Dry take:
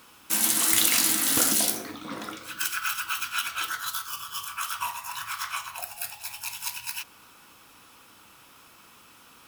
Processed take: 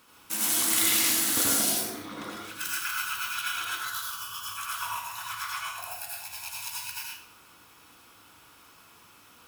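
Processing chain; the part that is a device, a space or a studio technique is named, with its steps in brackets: bathroom (reverberation RT60 0.60 s, pre-delay 76 ms, DRR -3.5 dB); trim -6.5 dB

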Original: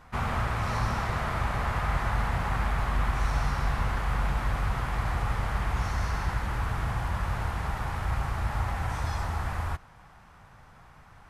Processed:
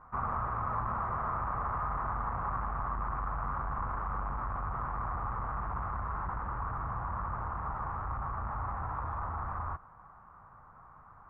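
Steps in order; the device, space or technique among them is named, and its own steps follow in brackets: overdriven synthesiser ladder filter (saturation -25.5 dBFS, distortion -13 dB; four-pole ladder low-pass 1.3 kHz, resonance 65%); trim +4.5 dB

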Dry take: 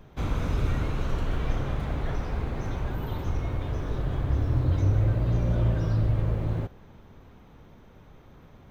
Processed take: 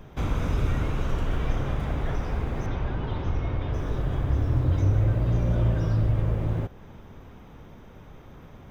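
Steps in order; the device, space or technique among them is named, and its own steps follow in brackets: parallel compression (in parallel at -2.5 dB: compression, threshold -37 dBFS, peak gain reduction 17.5 dB); 2.66–3.74 s: on the sum: low-pass 5.2 kHz 24 dB/octave; band-stop 4.2 kHz, Q 8.4

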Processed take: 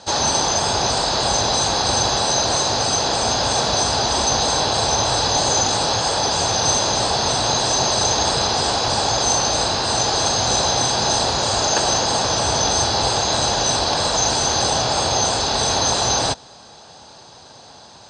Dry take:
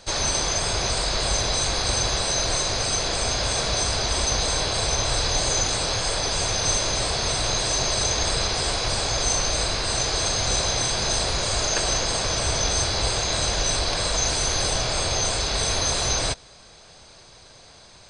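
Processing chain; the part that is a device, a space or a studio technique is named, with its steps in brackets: car door speaker (cabinet simulation 95–7600 Hz, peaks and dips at 250 Hz +5 dB, 840 Hz +9 dB, 2.2 kHz -9 dB); trim +5 dB

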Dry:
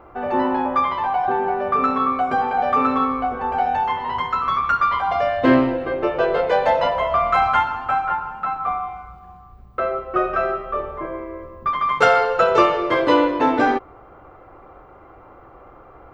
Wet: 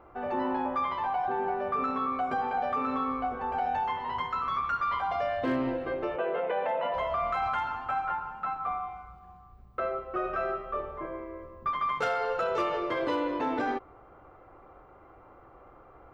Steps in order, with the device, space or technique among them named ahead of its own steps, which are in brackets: 6.16–6.94 s: elliptic band-pass 180–2900 Hz, stop band 40 dB; clipper into limiter (hard clipper -7 dBFS, distortion -28 dB; peak limiter -13 dBFS, peak gain reduction 6 dB); trim -8.5 dB

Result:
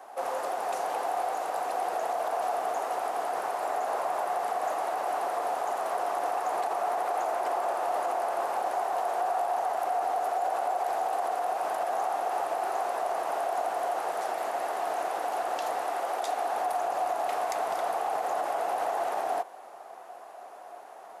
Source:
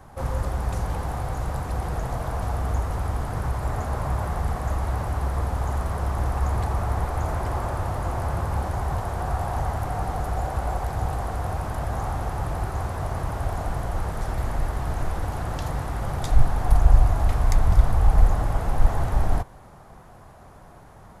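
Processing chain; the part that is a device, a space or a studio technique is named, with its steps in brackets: laptop speaker (high-pass 380 Hz 24 dB/octave; peaking EQ 710 Hz +10 dB 0.34 oct; peaking EQ 2.7 kHz +4 dB 0.26 oct; peak limiter -21 dBFS, peak gain reduction 6.5 dB); 15.84–16.54 s: steep high-pass 220 Hz 36 dB/octave

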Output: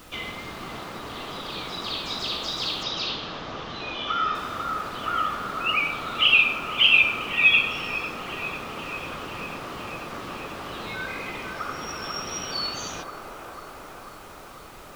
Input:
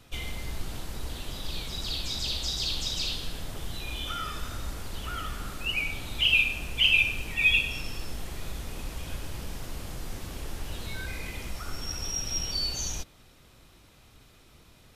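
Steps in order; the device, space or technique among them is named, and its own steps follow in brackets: horn gramophone (band-pass 190–3600 Hz; peaking EQ 1.2 kHz +9 dB 0.32 oct; wow and flutter 28 cents; pink noise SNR 20 dB); 2.83–4.35 s: steep low-pass 6.4 kHz 48 dB/octave; feedback echo behind a band-pass 494 ms, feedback 72%, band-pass 740 Hz, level -3 dB; trim +6 dB

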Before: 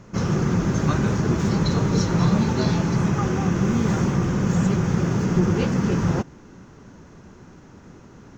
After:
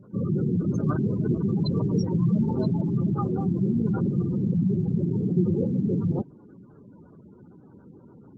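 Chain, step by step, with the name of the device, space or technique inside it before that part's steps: 3.32–4.60 s: high-pass 42 Hz 12 dB/octave; noise-suppressed video call (high-pass 110 Hz 12 dB/octave; spectral gate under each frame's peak -15 dB strong; trim -2 dB; Opus 20 kbps 48 kHz)

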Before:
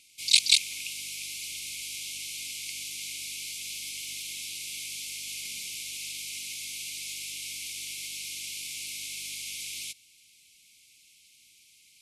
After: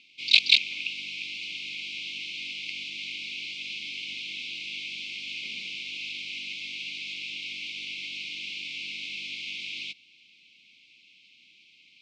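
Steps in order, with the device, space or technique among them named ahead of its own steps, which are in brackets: kitchen radio (cabinet simulation 180–3800 Hz, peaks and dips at 200 Hz +5 dB, 280 Hz +3 dB, 820 Hz -10 dB, 1.7 kHz -9 dB, 2.6 kHz +4 dB); trim +5.5 dB

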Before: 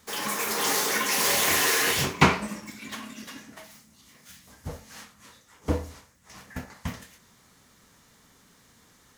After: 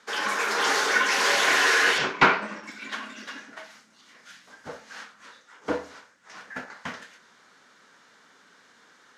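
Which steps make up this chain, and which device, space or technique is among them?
intercom (band-pass 340–5000 Hz; peaking EQ 1.5 kHz +9 dB 0.33 oct; saturation -10 dBFS, distortion -18 dB); 1.98–2.64 s: distance through air 84 m; trim +3 dB

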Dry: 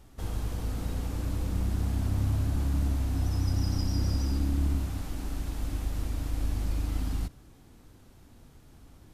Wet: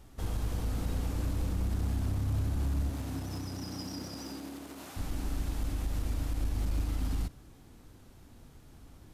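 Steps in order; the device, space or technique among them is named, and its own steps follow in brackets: limiter into clipper (peak limiter -23 dBFS, peak gain reduction 6.5 dB; hard clipper -25 dBFS, distortion -25 dB); 2.89–4.96 s: high-pass 100 Hz -> 430 Hz 12 dB/octave

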